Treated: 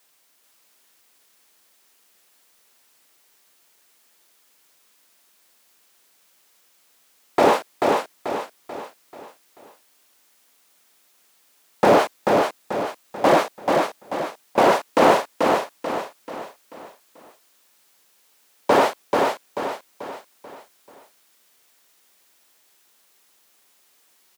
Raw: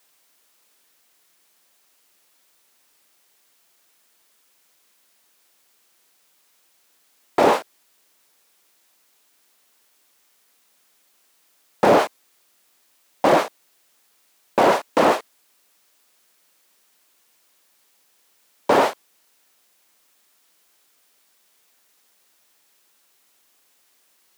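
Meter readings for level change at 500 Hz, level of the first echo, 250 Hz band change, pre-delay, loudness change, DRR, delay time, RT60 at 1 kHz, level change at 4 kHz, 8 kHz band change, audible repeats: +2.0 dB, −3.5 dB, +2.0 dB, no reverb audible, −1.5 dB, no reverb audible, 437 ms, no reverb audible, +2.0 dB, +2.0 dB, 5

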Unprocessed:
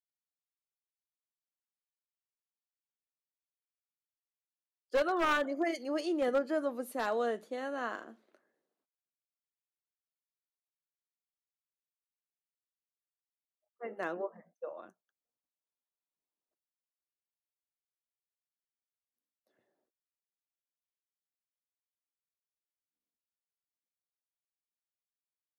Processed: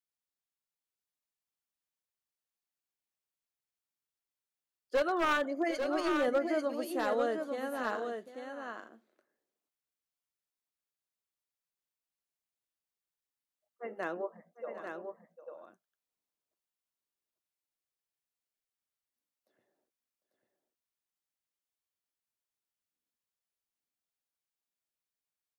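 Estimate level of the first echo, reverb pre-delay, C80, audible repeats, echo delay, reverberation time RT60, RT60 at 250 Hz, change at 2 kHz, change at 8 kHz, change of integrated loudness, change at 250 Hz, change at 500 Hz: −14.5 dB, no reverb audible, no reverb audible, 2, 750 ms, no reverb audible, no reverb audible, +1.0 dB, +1.0 dB, 0.0 dB, +1.0 dB, +1.0 dB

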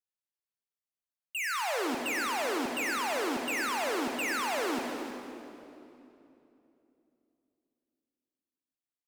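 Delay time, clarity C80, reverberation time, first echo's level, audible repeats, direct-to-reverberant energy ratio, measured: 320 ms, 3.0 dB, 3.0 s, −10.0 dB, 1, 2.0 dB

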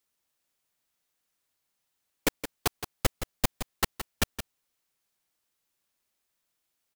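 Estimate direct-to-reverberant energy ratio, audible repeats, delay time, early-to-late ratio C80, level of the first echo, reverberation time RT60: no reverb audible, 1, 169 ms, no reverb audible, −10.5 dB, no reverb audible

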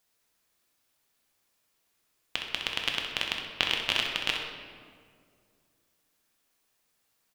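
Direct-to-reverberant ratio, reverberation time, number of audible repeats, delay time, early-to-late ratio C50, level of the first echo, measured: 0.0 dB, 2.1 s, 1, 64 ms, 2.0 dB, −8.0 dB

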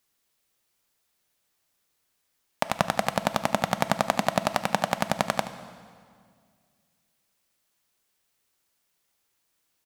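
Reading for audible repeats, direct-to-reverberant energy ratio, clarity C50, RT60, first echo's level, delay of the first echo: 1, 9.5 dB, 10.5 dB, 2.0 s, −15.0 dB, 76 ms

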